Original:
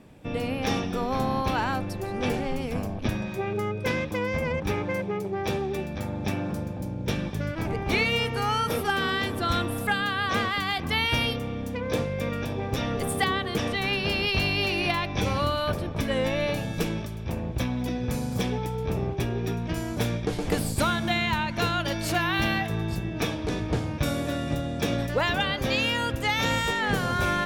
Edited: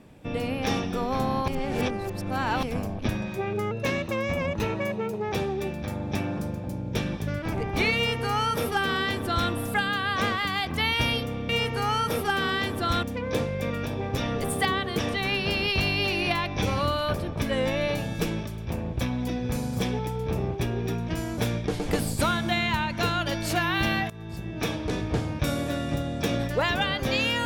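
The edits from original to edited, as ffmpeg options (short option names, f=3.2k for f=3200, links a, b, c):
-filter_complex "[0:a]asplit=8[a][b][c][d][e][f][g][h];[a]atrim=end=1.482[i];[b]atrim=start=1.478:end=2.632,asetpts=PTS-STARTPTS,areverse[j];[c]atrim=start=2.628:end=3.714[k];[d]atrim=start=3.71:end=5.45,asetpts=PTS-STARTPTS,asetrate=47628,aresample=44100[l];[e]atrim=start=5.446:end=11.622[m];[f]atrim=start=8.088:end=9.632[n];[g]atrim=start=11.618:end=22.69,asetpts=PTS-STARTPTS,afade=t=out:st=11.068:d=0.004:c=hsin:silence=0.125893[o];[h]atrim=start=22.69,asetpts=PTS-STARTPTS,afade=t=in:d=0.62:silence=0.125893[p];[i][j]acrossfade=d=0.004:c1=hsin:c2=hsin[q];[q][k]acrossfade=d=0.004:c1=hsin:c2=hsin[r];[r][l]acrossfade=d=0.004:c1=hsin:c2=hsin[s];[s][m]acrossfade=d=0.004:c1=hsin:c2=hsin[t];[t][n]acrossfade=d=0.004:c1=hsin:c2=hsin[u];[o][p]concat=n=2:v=0:a=1[v];[u][v]acrossfade=d=0.004:c1=hsin:c2=hsin"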